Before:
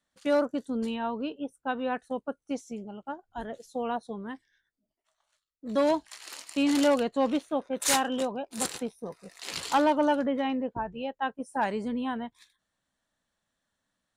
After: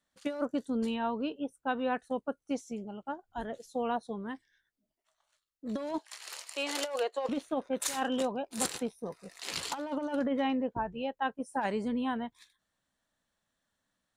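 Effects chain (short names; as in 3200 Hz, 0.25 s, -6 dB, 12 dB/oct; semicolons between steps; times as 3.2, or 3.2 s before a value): 5.98–7.29 steep high-pass 400 Hz 36 dB/oct; negative-ratio compressor -27 dBFS, ratio -0.5; gain -2.5 dB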